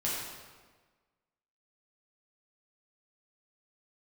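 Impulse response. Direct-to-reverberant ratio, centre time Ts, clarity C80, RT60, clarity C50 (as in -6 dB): -7.0 dB, 88 ms, 1.5 dB, 1.4 s, -0.5 dB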